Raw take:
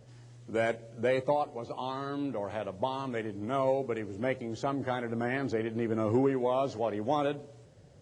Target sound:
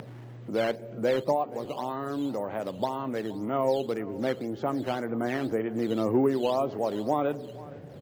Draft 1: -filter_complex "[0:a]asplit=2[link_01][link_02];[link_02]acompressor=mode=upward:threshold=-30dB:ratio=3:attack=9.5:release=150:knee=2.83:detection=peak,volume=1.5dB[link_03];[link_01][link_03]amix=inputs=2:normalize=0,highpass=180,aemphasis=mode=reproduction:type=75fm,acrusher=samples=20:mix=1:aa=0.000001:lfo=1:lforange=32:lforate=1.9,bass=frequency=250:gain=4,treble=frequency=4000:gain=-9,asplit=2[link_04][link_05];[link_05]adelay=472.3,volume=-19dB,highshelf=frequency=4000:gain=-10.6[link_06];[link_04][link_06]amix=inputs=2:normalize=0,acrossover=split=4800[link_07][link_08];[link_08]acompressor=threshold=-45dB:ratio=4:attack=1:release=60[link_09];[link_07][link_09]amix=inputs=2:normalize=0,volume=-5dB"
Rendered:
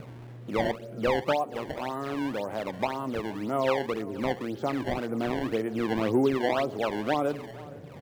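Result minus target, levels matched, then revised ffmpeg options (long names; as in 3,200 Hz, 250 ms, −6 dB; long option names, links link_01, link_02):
sample-and-hold swept by an LFO: distortion +10 dB
-filter_complex "[0:a]asplit=2[link_01][link_02];[link_02]acompressor=mode=upward:threshold=-30dB:ratio=3:attack=9.5:release=150:knee=2.83:detection=peak,volume=1.5dB[link_03];[link_01][link_03]amix=inputs=2:normalize=0,highpass=180,aemphasis=mode=reproduction:type=75fm,acrusher=samples=7:mix=1:aa=0.000001:lfo=1:lforange=11.2:lforate=1.9,bass=frequency=250:gain=4,treble=frequency=4000:gain=-9,asplit=2[link_04][link_05];[link_05]adelay=472.3,volume=-19dB,highshelf=frequency=4000:gain=-10.6[link_06];[link_04][link_06]amix=inputs=2:normalize=0,acrossover=split=4800[link_07][link_08];[link_08]acompressor=threshold=-45dB:ratio=4:attack=1:release=60[link_09];[link_07][link_09]amix=inputs=2:normalize=0,volume=-5dB"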